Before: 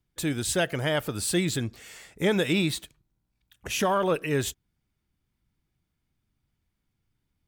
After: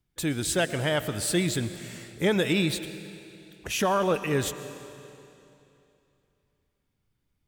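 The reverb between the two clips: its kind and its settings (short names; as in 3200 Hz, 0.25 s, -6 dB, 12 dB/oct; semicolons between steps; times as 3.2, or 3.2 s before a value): digital reverb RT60 2.9 s, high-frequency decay 0.95×, pre-delay 75 ms, DRR 12 dB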